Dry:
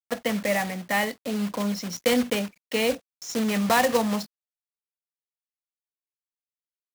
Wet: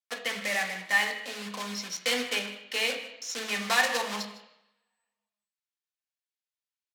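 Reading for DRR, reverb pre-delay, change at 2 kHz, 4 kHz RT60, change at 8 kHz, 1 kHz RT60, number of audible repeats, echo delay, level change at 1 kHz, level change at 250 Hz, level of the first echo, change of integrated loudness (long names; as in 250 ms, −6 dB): 1.5 dB, 3 ms, +2.0 dB, 0.85 s, −1.5 dB, 0.90 s, 1, 156 ms, −5.5 dB, −14.5 dB, −17.0 dB, −3.5 dB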